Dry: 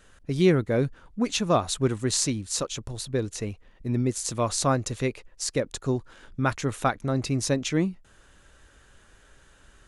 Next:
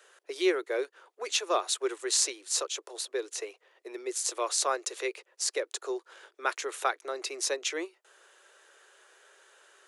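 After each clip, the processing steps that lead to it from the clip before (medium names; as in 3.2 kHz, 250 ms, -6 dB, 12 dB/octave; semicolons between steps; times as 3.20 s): dynamic bell 640 Hz, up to -6 dB, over -37 dBFS, Q 0.9; steep high-pass 360 Hz 72 dB/octave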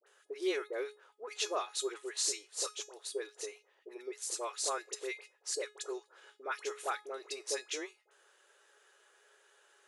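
feedback comb 420 Hz, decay 0.27 s, harmonics all, mix 70%; phase dispersion highs, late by 67 ms, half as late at 1.2 kHz; trim +2 dB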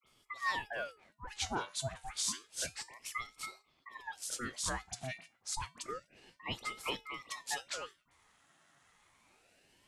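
ring modulator with a swept carrier 990 Hz, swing 75%, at 0.29 Hz; trim +1 dB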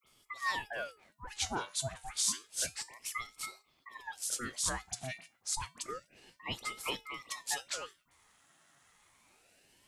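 treble shelf 6.6 kHz +8 dB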